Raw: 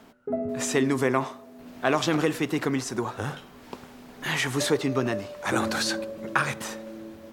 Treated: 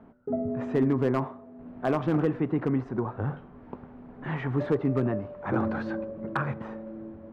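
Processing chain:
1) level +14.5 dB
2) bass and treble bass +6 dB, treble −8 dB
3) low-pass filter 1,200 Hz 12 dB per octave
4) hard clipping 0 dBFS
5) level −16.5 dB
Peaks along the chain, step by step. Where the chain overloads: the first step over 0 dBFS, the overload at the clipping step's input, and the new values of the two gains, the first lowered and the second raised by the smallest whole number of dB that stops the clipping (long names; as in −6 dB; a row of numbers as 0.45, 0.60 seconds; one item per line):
+7.5, +8.0, +6.0, 0.0, −16.5 dBFS
step 1, 6.0 dB
step 1 +8.5 dB, step 5 −10.5 dB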